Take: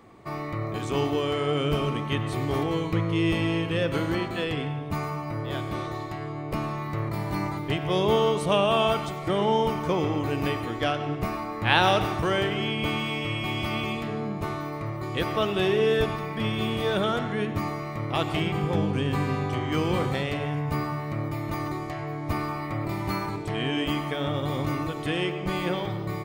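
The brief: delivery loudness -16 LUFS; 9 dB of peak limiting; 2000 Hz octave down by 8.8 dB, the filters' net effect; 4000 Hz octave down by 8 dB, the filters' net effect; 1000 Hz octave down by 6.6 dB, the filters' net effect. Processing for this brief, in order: bell 1000 Hz -6.5 dB; bell 2000 Hz -7.5 dB; bell 4000 Hz -7 dB; gain +15.5 dB; limiter -5.5 dBFS

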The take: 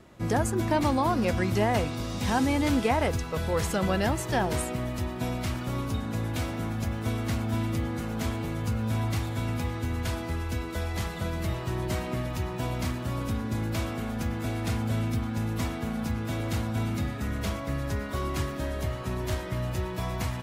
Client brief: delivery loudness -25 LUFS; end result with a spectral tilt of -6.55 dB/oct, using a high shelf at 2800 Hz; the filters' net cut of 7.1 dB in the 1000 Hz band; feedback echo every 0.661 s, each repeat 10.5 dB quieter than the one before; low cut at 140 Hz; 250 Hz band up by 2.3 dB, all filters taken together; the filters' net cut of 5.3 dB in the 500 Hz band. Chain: HPF 140 Hz; bell 250 Hz +5.5 dB; bell 500 Hz -7 dB; bell 1000 Hz -6 dB; high shelf 2800 Hz -7.5 dB; feedback echo 0.661 s, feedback 30%, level -10.5 dB; gain +6 dB

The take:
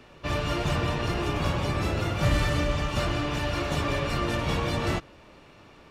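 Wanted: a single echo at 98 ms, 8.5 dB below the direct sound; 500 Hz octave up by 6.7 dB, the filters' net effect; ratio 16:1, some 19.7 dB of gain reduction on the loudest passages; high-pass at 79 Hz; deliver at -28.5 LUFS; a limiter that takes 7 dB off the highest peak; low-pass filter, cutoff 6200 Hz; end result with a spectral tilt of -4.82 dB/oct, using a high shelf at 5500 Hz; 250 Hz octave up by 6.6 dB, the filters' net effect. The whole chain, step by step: HPF 79 Hz; LPF 6200 Hz; bell 250 Hz +7 dB; bell 500 Hz +6.5 dB; high shelf 5500 Hz +8 dB; compressor 16:1, threshold -37 dBFS; limiter -33.5 dBFS; echo 98 ms -8.5 dB; gain +14 dB

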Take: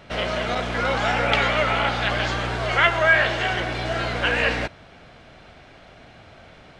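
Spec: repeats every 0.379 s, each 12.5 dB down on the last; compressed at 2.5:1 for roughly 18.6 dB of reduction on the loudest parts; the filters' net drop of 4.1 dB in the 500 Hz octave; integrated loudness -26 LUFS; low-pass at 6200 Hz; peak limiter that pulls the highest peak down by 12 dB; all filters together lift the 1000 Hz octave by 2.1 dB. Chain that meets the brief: LPF 6200 Hz; bell 500 Hz -8 dB; bell 1000 Hz +5.5 dB; compressor 2.5:1, threshold -41 dBFS; limiter -30 dBFS; feedback echo 0.379 s, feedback 24%, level -12.5 dB; gain +13.5 dB

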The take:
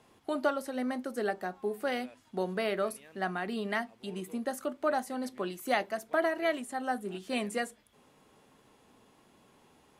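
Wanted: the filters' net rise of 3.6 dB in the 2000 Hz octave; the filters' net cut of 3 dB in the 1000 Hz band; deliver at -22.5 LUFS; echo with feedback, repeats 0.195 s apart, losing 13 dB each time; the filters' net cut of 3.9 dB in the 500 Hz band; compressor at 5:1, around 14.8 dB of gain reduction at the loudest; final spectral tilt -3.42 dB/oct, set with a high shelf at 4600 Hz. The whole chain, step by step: bell 500 Hz -4 dB; bell 1000 Hz -4 dB; bell 2000 Hz +7 dB; high shelf 4600 Hz -8 dB; compressor 5:1, threshold -42 dBFS; feedback echo 0.195 s, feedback 22%, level -13 dB; gain +22.5 dB

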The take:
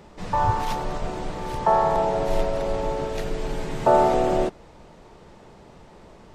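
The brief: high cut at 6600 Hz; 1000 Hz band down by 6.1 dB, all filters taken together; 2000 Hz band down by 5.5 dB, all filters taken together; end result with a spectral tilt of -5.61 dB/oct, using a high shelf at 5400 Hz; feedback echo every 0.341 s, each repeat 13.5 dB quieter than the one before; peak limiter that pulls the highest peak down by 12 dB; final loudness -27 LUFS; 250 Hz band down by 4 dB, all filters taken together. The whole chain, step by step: LPF 6600 Hz; bell 250 Hz -6 dB; bell 1000 Hz -6.5 dB; bell 2000 Hz -4 dB; high shelf 5400 Hz -4.5 dB; limiter -21.5 dBFS; feedback echo 0.341 s, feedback 21%, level -13.5 dB; gain +5 dB

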